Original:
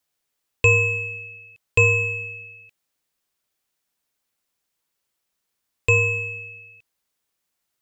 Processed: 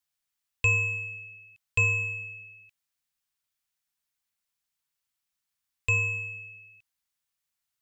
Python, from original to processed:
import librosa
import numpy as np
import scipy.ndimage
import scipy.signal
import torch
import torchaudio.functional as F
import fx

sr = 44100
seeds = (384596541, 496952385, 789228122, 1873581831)

y = fx.peak_eq(x, sr, hz=400.0, db=-14.5, octaves=1.4)
y = F.gain(torch.from_numpy(y), -6.0).numpy()